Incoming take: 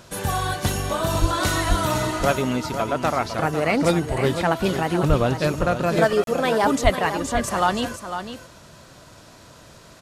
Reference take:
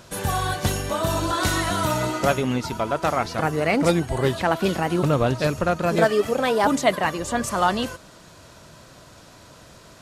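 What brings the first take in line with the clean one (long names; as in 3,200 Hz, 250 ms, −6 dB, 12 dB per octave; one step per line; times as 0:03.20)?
high-pass at the plosives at 0:01.20/0:01.68/0:05.08/0:06.83
repair the gap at 0:06.24, 32 ms
echo removal 502 ms −9.5 dB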